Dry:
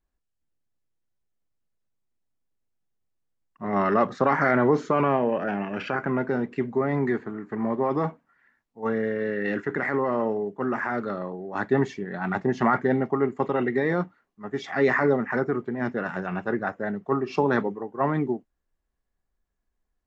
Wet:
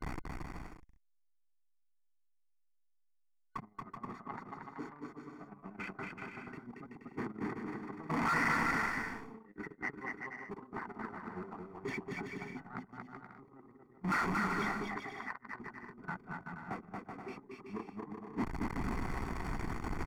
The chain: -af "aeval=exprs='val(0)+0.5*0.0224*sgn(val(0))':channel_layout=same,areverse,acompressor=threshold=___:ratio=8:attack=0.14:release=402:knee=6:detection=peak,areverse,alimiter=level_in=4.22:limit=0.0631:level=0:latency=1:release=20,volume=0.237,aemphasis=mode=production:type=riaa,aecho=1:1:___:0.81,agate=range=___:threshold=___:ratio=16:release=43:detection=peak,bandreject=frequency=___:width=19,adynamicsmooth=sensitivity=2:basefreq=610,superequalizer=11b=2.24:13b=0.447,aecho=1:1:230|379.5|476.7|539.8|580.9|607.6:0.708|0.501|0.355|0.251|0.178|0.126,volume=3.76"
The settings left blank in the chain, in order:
0.0282, 0.9, 0.01, 0.00708, 1.6k